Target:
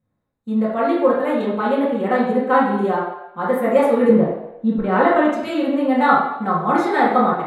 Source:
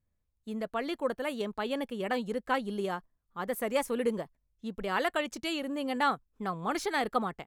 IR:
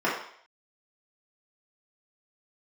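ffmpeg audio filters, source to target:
-filter_complex "[0:a]asettb=1/sr,asplit=3[link_01][link_02][link_03];[link_01]atrim=end=4.094[link_04];[link_02]atrim=start=4.09:end=5.25,asetpts=PTS-STARTPTS,afade=type=in:duration=0.004:curve=qsin,afade=type=out:start_time=1.156:duration=0.004:curve=qsin,aemphasis=mode=reproduction:type=bsi[link_05];[link_03]atrim=start=5.246[link_06];[link_04][link_05]acrossfade=duration=0.004:curve1=hsin:curve2=qsin[link_07];[link_07][link_06]acrossfade=duration=0.004:curve1=qsin:curve2=hsin[link_08];[1:a]atrim=start_sample=2205,asetrate=31752,aresample=44100[link_09];[link_08][link_09]afir=irnorm=-1:irlink=0,volume=-3.5dB"

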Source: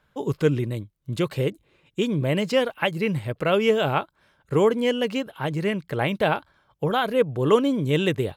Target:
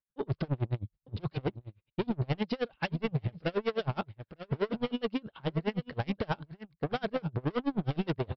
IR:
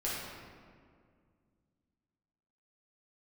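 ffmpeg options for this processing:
-af "agate=range=-33dB:threshold=-47dB:ratio=3:detection=peak,lowshelf=frequency=210:gain=10,aresample=11025,asoftclip=type=tanh:threshold=-23.5dB,aresample=44100,aecho=1:1:904:0.224,aeval=exprs='val(0)*pow(10,-32*(0.5-0.5*cos(2*PI*9.5*n/s))/20)':channel_layout=same"

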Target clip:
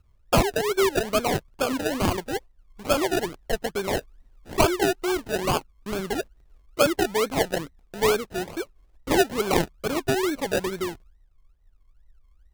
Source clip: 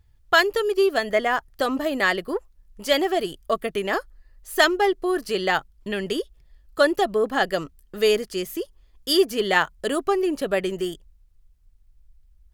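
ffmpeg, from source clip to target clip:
ffmpeg -i in.wav -af "acrusher=samples=32:mix=1:aa=0.000001:lfo=1:lforange=19.2:lforate=2.3,volume=-2dB" out.wav

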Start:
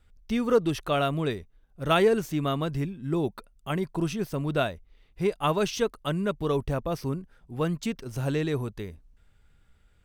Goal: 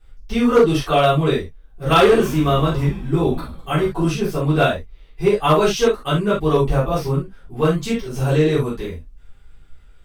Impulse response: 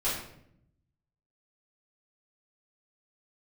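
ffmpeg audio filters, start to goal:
-filter_complex "[0:a]asettb=1/sr,asplit=3[link_01][link_02][link_03];[link_01]atrim=end=1.834[link_04];[link_02]atrim=start=1.83:end=3.85,asetpts=PTS-STARTPTS,afade=type=in:duration=0.004:curve=qsin,afade=type=out:start_time=2.016:duration=0.004:curve=qsin,asplit=7[link_05][link_06][link_07][link_08][link_09][link_10][link_11];[link_06]adelay=100,afreqshift=-88,volume=-14dB[link_12];[link_07]adelay=200,afreqshift=-176,volume=-18.9dB[link_13];[link_08]adelay=300,afreqshift=-264,volume=-23.8dB[link_14];[link_09]adelay=400,afreqshift=-352,volume=-28.6dB[link_15];[link_10]adelay=500,afreqshift=-440,volume=-33.5dB[link_16];[link_11]adelay=600,afreqshift=-528,volume=-38.4dB[link_17];[link_05][link_12][link_13][link_14][link_15][link_16][link_17]amix=inputs=7:normalize=0,atrim=end_sample=89082[link_18];[link_03]atrim=start=3.846[link_19];[link_04][link_18]acrossfade=duration=0.004:curve1=hsin:curve2=qsin[link_20];[link_20][link_19]acrossfade=duration=0.004:curve1=qsin:curve2=hsin[link_21];[1:a]atrim=start_sample=2205,atrim=end_sample=3969[link_22];[link_21][link_22]afir=irnorm=-1:irlink=0,volume=8.5dB,asoftclip=hard,volume=-8.5dB,volume=2dB"

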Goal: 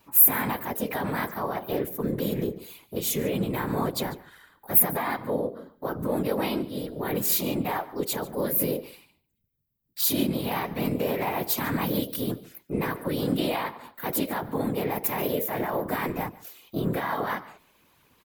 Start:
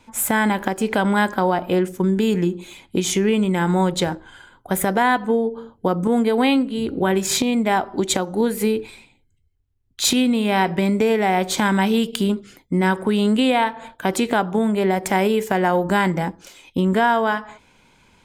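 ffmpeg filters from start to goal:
ffmpeg -i in.wav -filter_complex "[0:a]highpass=54,equalizer=frequency=170:width=1.3:gain=-2,bandreject=frequency=2700:width=8.5,alimiter=limit=-12dB:level=0:latency=1:release=27,aexciter=amount=14.2:drive=3.5:freq=11000,asplit=2[link_01][link_02];[link_02]asetrate=52444,aresample=44100,atempo=0.840896,volume=-1dB[link_03];[link_01][link_03]amix=inputs=2:normalize=0,afftfilt=real='hypot(re,im)*cos(2*PI*random(0))':imag='hypot(re,im)*sin(2*PI*random(1))':win_size=512:overlap=0.75,asplit=2[link_04][link_05];[link_05]aecho=0:1:144:0.1[link_06];[link_04][link_06]amix=inputs=2:normalize=0,volume=-4dB" out.wav

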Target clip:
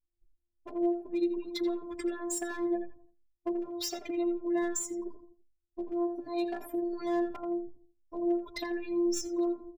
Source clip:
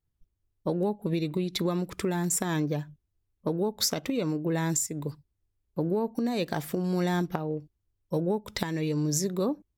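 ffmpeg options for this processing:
ffmpeg -i in.wav -filter_complex "[0:a]aeval=exprs='val(0)+0.5*0.0133*sgn(val(0))':channel_layout=same,afftdn=noise_reduction=35:noise_floor=-37,agate=range=-29dB:threshold=-41dB:ratio=16:detection=peak,afftfilt=real='hypot(re,im)*cos(PI*b)':imag='0':win_size=512:overlap=0.75,volume=23dB,asoftclip=hard,volume=-23dB,asplit=2[link_01][link_02];[link_02]adelay=84,lowpass=frequency=1600:poles=1,volume=-6.5dB,asplit=2[link_03][link_04];[link_04]adelay=84,lowpass=frequency=1600:poles=1,volume=0.3,asplit=2[link_05][link_06];[link_06]adelay=84,lowpass=frequency=1600:poles=1,volume=0.3,asplit=2[link_07][link_08];[link_08]adelay=84,lowpass=frequency=1600:poles=1,volume=0.3[link_09];[link_01][link_03][link_05][link_07][link_09]amix=inputs=5:normalize=0,asplit=2[link_10][link_11];[link_11]adelay=4.6,afreqshift=2.7[link_12];[link_10][link_12]amix=inputs=2:normalize=1" out.wav

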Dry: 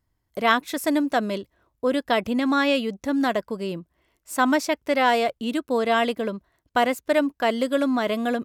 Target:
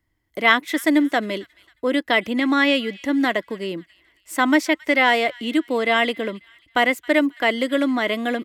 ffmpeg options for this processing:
ffmpeg -i in.wav -filter_complex "[0:a]equalizer=frequency=315:width_type=o:width=0.33:gain=8,equalizer=frequency=2000:width_type=o:width=0.33:gain=12,equalizer=frequency=3150:width_type=o:width=0.33:gain=6,acrossover=split=160|1300[link_01][link_02][link_03];[link_01]acompressor=threshold=-53dB:ratio=6[link_04];[link_03]aecho=1:1:270|540|810:0.0891|0.0357|0.0143[link_05];[link_04][link_02][link_05]amix=inputs=3:normalize=0" out.wav

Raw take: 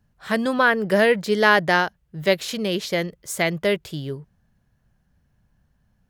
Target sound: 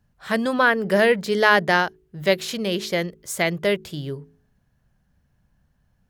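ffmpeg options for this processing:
ffmpeg -i in.wav -af "bandreject=frequency=53.2:width_type=h:width=4,bandreject=frequency=106.4:width_type=h:width=4,bandreject=frequency=159.6:width_type=h:width=4,bandreject=frequency=212.8:width_type=h:width=4,bandreject=frequency=266:width_type=h:width=4,bandreject=frequency=319.2:width_type=h:width=4,bandreject=frequency=372.4:width_type=h:width=4,bandreject=frequency=425.6:width_type=h:width=4" out.wav

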